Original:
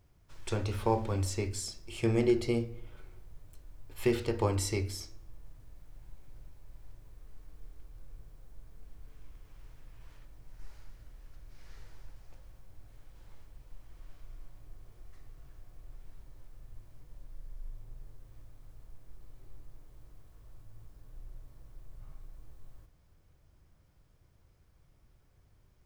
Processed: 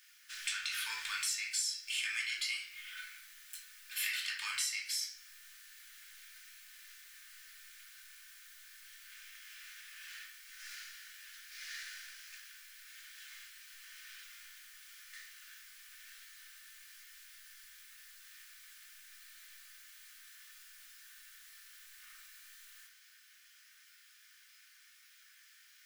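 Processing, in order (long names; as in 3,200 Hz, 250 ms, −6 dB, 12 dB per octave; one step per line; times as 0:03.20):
elliptic high-pass filter 1,600 Hz, stop band 60 dB
downward compressor 6 to 1, threshold −53 dBFS, peak gain reduction 18 dB
rectangular room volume 420 cubic metres, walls furnished, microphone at 2.6 metres
level +15.5 dB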